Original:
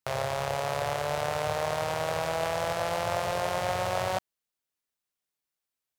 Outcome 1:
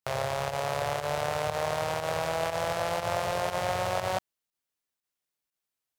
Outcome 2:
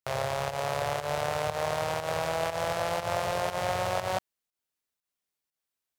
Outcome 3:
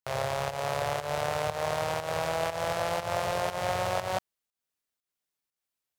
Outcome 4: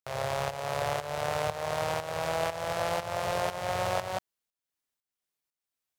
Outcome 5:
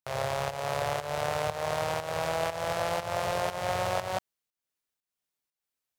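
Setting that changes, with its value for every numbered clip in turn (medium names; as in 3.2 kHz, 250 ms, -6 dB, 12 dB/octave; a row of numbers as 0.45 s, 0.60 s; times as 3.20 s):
volume shaper, release: 74 ms, 133 ms, 201 ms, 441 ms, 299 ms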